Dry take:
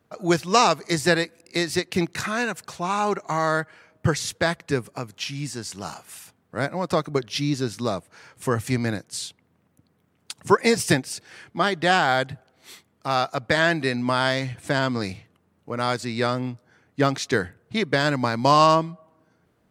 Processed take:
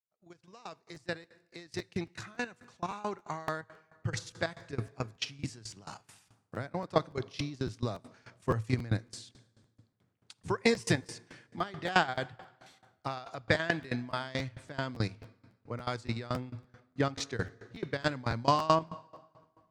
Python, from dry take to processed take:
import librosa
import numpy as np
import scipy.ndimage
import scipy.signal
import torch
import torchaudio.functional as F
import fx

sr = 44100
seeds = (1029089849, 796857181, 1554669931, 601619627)

y = fx.fade_in_head(x, sr, length_s=4.62)
y = fx.level_steps(y, sr, step_db=10)
y = scipy.signal.sosfilt(scipy.signal.butter(2, 7500.0, 'lowpass', fs=sr, output='sos'), y)
y = fx.peak_eq(y, sr, hz=110.0, db=12.5, octaves=0.22)
y = fx.rev_plate(y, sr, seeds[0], rt60_s=2.0, hf_ratio=0.75, predelay_ms=0, drr_db=17.0)
y = fx.buffer_crackle(y, sr, first_s=0.94, period_s=0.28, block=512, kind='repeat')
y = fx.tremolo_decay(y, sr, direction='decaying', hz=4.6, depth_db=20)